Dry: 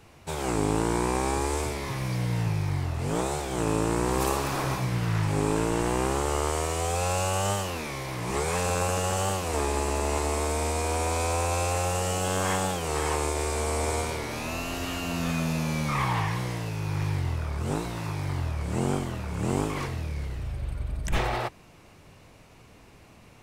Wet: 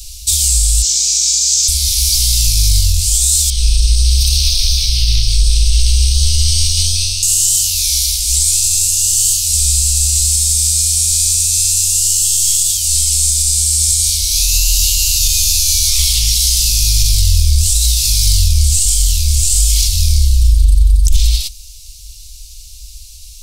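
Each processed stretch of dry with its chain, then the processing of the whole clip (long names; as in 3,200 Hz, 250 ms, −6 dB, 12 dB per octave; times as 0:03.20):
0:00.82–0:01.68: high-pass filter 130 Hz 24 dB per octave + high shelf with overshoot 7,900 Hz −8 dB, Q 3
0:03.50–0:07.23: Savitzky-Golay smoothing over 15 samples + amplitude modulation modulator 300 Hz, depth 35% + notch on a step sequencer 11 Hz 600–1,900 Hz
whole clip: inverse Chebyshev band-stop filter 130–1,800 Hz, stop band 50 dB; speech leveller; boost into a limiter +29 dB; level −1 dB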